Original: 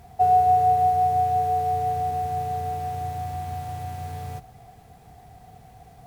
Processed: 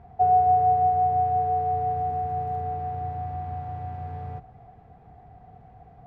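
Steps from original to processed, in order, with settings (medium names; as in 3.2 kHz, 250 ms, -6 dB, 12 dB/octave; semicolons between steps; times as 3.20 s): low-pass 1.5 kHz 12 dB/octave; 1.96–2.62 s: crackle 66 per s -53 dBFS; trim -1 dB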